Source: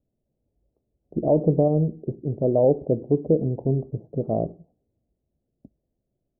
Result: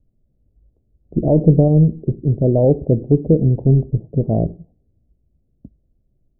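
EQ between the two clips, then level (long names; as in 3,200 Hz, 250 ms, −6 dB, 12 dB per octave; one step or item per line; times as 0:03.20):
spectral tilt −4.5 dB per octave
−1.5 dB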